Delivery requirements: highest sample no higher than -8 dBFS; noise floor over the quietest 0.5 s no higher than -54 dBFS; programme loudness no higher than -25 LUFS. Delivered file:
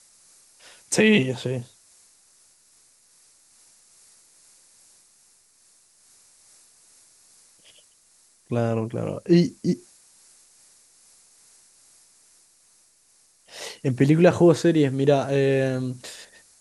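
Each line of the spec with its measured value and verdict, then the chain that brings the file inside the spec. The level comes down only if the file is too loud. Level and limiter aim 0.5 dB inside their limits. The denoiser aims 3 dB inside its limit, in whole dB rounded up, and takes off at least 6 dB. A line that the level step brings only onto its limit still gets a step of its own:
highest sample -5.0 dBFS: fail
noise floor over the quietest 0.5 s -60 dBFS: pass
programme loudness -21.5 LUFS: fail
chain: trim -4 dB

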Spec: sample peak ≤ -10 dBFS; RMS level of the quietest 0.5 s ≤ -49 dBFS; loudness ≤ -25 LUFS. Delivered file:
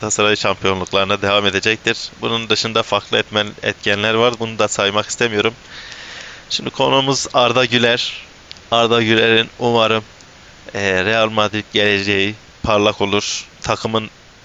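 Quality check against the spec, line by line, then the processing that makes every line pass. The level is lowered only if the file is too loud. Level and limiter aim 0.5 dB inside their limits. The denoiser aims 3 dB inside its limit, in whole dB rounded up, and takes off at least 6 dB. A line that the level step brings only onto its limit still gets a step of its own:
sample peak -1.5 dBFS: fail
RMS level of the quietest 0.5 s -42 dBFS: fail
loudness -16.0 LUFS: fail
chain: trim -9.5 dB

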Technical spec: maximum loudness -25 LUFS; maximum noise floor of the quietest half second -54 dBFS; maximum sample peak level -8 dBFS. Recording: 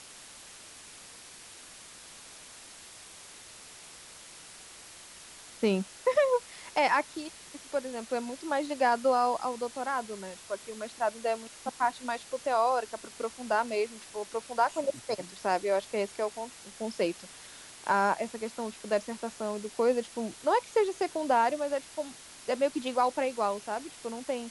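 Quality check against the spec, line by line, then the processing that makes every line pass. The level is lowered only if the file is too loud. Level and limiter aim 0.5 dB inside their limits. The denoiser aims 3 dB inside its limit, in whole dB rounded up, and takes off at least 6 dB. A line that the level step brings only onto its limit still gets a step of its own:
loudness -31.0 LUFS: pass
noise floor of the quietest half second -50 dBFS: fail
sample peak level -13.0 dBFS: pass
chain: noise reduction 7 dB, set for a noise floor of -50 dBFS

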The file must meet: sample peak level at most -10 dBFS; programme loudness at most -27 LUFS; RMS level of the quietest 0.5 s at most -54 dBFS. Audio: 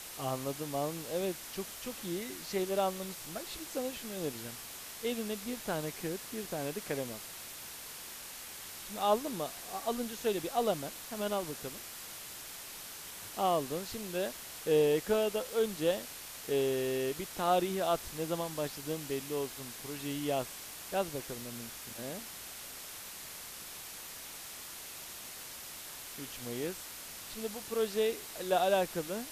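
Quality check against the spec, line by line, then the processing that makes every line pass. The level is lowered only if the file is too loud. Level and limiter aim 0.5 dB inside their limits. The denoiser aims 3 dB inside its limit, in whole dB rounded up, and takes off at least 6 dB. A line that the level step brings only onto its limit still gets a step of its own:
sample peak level -15.5 dBFS: pass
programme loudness -36.0 LUFS: pass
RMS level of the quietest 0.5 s -46 dBFS: fail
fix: noise reduction 11 dB, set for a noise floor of -46 dBFS

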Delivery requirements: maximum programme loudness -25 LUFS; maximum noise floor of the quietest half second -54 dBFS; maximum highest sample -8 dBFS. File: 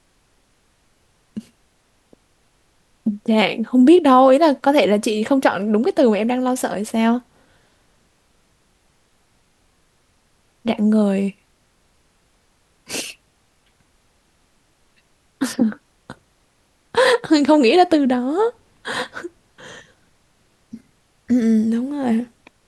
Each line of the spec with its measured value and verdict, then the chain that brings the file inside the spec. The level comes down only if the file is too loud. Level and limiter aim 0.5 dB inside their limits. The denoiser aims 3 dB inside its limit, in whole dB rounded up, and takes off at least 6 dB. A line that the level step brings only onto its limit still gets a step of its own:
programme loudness -17.5 LUFS: fail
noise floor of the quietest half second -61 dBFS: pass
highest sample -2.5 dBFS: fail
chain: trim -8 dB

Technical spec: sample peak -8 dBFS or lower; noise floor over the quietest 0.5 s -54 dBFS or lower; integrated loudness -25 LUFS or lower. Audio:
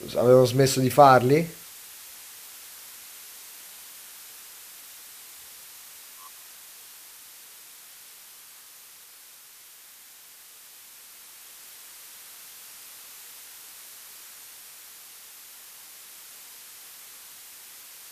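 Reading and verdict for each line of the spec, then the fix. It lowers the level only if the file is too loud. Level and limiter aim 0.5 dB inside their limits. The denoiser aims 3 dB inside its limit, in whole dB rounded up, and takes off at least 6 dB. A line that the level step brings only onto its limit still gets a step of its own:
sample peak -3.5 dBFS: fail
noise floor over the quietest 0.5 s -49 dBFS: fail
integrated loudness -19.0 LUFS: fail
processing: trim -6.5 dB

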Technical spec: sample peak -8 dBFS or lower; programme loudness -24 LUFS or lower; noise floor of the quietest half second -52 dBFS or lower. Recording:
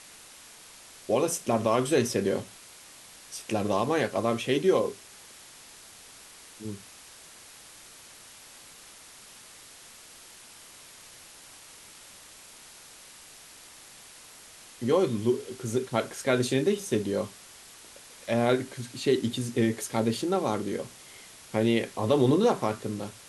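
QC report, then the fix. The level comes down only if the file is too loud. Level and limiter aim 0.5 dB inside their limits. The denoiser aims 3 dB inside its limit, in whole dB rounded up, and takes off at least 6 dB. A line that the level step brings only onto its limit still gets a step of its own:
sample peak -10.5 dBFS: pass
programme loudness -27.5 LUFS: pass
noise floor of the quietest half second -50 dBFS: fail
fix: noise reduction 6 dB, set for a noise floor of -50 dBFS

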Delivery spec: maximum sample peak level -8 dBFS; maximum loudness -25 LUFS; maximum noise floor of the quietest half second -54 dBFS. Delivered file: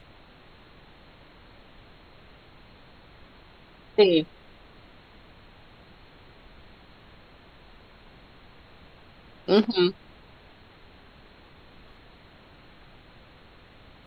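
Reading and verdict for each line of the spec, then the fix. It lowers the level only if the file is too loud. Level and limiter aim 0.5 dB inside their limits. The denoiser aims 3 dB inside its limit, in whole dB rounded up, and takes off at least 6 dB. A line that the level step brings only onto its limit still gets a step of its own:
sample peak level -6.0 dBFS: fail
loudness -23.5 LUFS: fail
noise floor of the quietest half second -52 dBFS: fail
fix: noise reduction 6 dB, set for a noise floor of -52 dBFS; trim -2 dB; peak limiter -8.5 dBFS

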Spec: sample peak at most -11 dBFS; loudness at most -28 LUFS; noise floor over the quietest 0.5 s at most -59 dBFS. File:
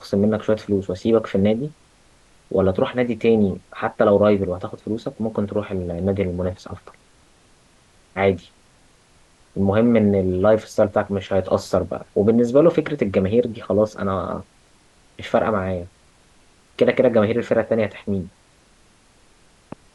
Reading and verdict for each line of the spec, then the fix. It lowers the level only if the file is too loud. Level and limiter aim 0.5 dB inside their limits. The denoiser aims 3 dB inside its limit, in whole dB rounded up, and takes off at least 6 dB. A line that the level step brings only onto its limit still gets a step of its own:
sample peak -4.5 dBFS: fail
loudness -20.5 LUFS: fail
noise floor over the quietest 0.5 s -55 dBFS: fail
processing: trim -8 dB

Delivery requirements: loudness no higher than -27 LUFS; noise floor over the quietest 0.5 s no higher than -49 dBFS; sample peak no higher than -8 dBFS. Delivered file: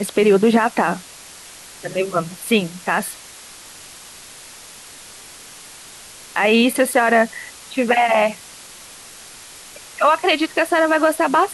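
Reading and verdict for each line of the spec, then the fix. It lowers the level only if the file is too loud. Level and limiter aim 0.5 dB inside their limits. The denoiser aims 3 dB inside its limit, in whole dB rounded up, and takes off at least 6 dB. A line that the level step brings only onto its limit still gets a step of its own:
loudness -18.0 LUFS: fail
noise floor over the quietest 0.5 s -40 dBFS: fail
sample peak -5.5 dBFS: fail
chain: trim -9.5 dB

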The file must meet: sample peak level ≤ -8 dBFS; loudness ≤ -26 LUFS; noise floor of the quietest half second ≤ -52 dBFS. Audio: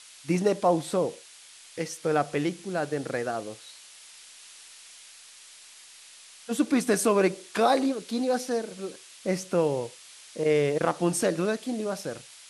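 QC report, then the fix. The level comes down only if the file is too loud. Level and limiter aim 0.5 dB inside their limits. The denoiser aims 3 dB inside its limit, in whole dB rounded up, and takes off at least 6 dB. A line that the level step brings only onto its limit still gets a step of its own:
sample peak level -11.0 dBFS: pass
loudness -27.5 LUFS: pass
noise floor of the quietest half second -50 dBFS: fail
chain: noise reduction 6 dB, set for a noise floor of -50 dBFS

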